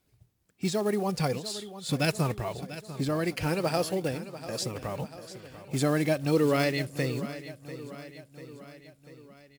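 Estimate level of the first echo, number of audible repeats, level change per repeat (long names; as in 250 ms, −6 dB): −14.0 dB, 4, −5.0 dB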